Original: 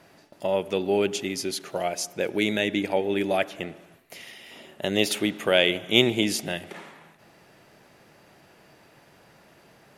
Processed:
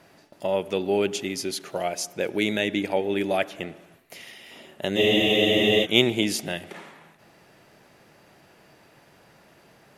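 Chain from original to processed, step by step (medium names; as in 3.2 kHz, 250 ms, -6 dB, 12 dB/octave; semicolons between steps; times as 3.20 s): spectral freeze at 5.00 s, 0.84 s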